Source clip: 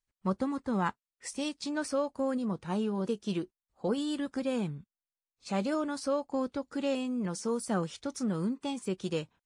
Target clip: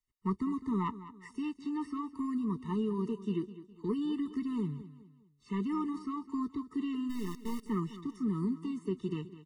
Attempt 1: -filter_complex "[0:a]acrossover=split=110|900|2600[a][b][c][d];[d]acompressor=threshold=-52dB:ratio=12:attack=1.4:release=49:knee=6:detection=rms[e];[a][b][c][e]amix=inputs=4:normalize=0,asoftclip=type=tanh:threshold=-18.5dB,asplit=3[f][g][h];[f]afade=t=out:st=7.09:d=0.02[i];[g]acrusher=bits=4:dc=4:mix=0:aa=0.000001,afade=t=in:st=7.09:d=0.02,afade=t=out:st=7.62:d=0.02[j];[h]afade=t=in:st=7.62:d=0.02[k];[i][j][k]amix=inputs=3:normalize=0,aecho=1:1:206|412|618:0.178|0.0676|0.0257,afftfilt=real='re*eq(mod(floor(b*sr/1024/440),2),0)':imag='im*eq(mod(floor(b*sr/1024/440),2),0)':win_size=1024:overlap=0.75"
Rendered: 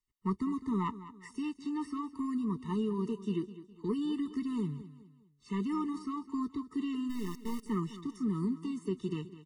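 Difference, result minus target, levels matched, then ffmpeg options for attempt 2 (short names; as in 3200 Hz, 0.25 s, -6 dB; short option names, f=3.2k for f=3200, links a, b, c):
compressor: peak gain reduction -6 dB
-filter_complex "[0:a]acrossover=split=110|900|2600[a][b][c][d];[d]acompressor=threshold=-58.5dB:ratio=12:attack=1.4:release=49:knee=6:detection=rms[e];[a][b][c][e]amix=inputs=4:normalize=0,asoftclip=type=tanh:threshold=-18.5dB,asplit=3[f][g][h];[f]afade=t=out:st=7.09:d=0.02[i];[g]acrusher=bits=4:dc=4:mix=0:aa=0.000001,afade=t=in:st=7.09:d=0.02,afade=t=out:st=7.62:d=0.02[j];[h]afade=t=in:st=7.62:d=0.02[k];[i][j][k]amix=inputs=3:normalize=0,aecho=1:1:206|412|618:0.178|0.0676|0.0257,afftfilt=real='re*eq(mod(floor(b*sr/1024/440),2),0)':imag='im*eq(mod(floor(b*sr/1024/440),2),0)':win_size=1024:overlap=0.75"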